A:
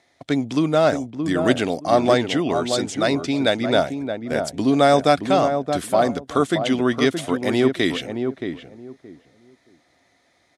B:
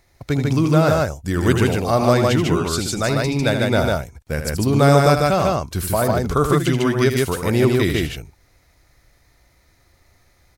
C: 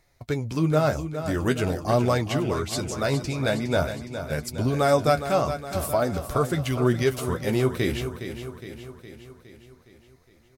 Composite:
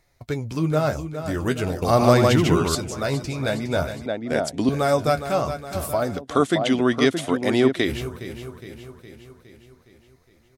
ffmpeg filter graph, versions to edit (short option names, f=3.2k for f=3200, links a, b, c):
-filter_complex "[0:a]asplit=2[a][b];[2:a]asplit=4[c][d][e][f];[c]atrim=end=1.822[g];[1:a]atrim=start=1.818:end=2.752[h];[d]atrim=start=2.748:end=4.062[i];[a]atrim=start=4.058:end=4.692[j];[e]atrim=start=4.688:end=6.22[k];[b]atrim=start=6.12:end=7.9[l];[f]atrim=start=7.8[m];[g][h]acrossfade=d=0.004:c1=hsin:c2=hsin[n];[n][i]acrossfade=d=0.004:c1=hsin:c2=hsin[o];[o][j]acrossfade=d=0.004:c1=hsin:c2=hsin[p];[p][k]acrossfade=d=0.004:c1=hsin:c2=hsin[q];[q][l]acrossfade=d=0.1:c1=tri:c2=tri[r];[r][m]acrossfade=d=0.1:c1=tri:c2=tri"